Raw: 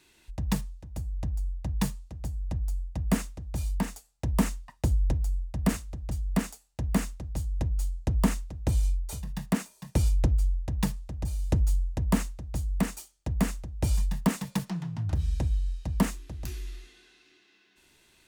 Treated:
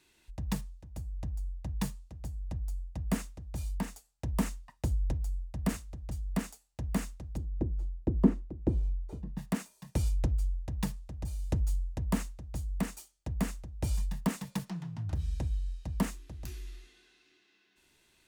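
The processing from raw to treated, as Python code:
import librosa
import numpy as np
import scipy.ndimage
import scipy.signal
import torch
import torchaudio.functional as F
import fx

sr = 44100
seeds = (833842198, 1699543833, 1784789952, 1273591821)

y = fx.curve_eq(x, sr, hz=(120.0, 350.0, 580.0, 12000.0), db=(0, 14, 1, -26), at=(7.36, 9.37), fade=0.02)
y = y * 10.0 ** (-5.5 / 20.0)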